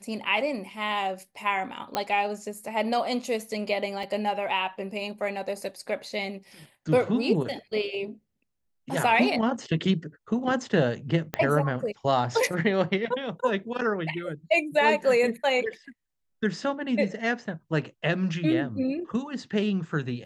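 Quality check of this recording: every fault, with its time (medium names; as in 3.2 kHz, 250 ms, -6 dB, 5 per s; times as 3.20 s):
1.95 s: pop -12 dBFS
4.03 s: dropout 3.5 ms
11.34 s: pop -13 dBFS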